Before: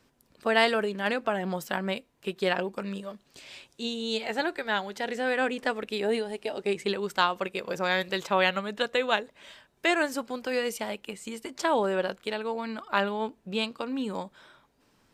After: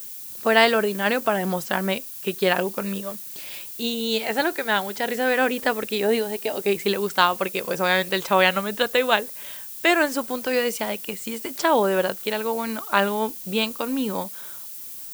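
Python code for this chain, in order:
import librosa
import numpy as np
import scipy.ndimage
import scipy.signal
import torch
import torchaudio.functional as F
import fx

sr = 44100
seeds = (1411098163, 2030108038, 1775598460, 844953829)

y = fx.dmg_noise_colour(x, sr, seeds[0], colour='violet', level_db=-43.0)
y = F.gain(torch.from_numpy(y), 6.0).numpy()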